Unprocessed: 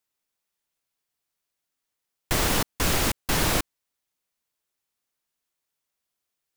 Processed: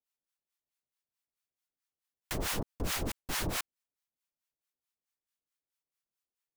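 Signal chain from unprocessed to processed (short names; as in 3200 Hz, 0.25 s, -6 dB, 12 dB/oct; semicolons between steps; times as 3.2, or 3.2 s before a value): harmonic tremolo 4.6 Hz, depth 100%, crossover 770 Hz; gain -6 dB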